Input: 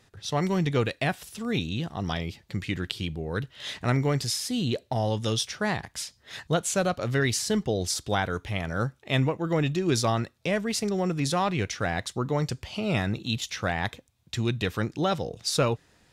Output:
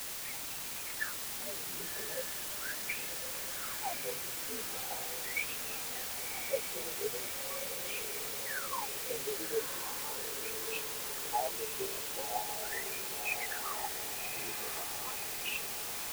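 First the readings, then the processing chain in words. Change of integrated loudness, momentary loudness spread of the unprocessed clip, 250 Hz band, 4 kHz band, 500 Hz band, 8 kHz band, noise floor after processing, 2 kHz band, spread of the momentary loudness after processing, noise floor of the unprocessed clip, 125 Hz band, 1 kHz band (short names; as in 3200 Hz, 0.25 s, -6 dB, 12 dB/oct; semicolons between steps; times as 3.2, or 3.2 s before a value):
-7.5 dB, 7 LU, -23.5 dB, -7.5 dB, -12.5 dB, -2.5 dB, -41 dBFS, -6.5 dB, 3 LU, -63 dBFS, -29.0 dB, -9.0 dB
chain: inharmonic rescaling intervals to 84%; compressor, threshold -30 dBFS, peak gain reduction 10 dB; bell 830 Hz +12.5 dB 0.23 oct; phaser 1.1 Hz, delay 4.7 ms, feedback 35%; wah 0.4 Hz 390–2700 Hz, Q 20; requantised 8-bit, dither triangular; on a send: diffused feedback echo 1.097 s, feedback 65%, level -7 dB; on the sum: gain +7 dB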